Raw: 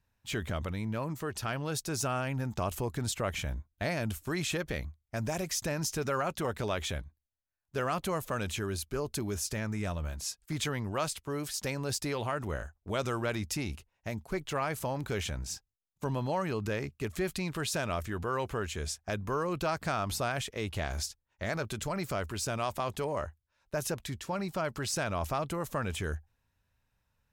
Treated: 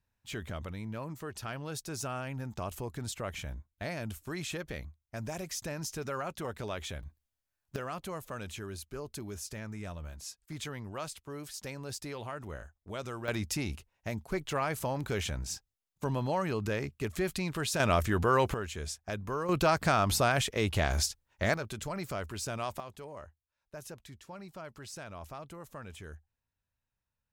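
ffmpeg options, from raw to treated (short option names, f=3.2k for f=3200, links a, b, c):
-af "asetnsamples=n=441:p=0,asendcmd='7.03 volume volume 4dB;7.76 volume volume -7dB;13.28 volume volume 0.5dB;17.8 volume volume 7dB;18.54 volume volume -2.5dB;19.49 volume volume 5.5dB;21.54 volume volume -3dB;22.8 volume volume -12dB',volume=-5dB"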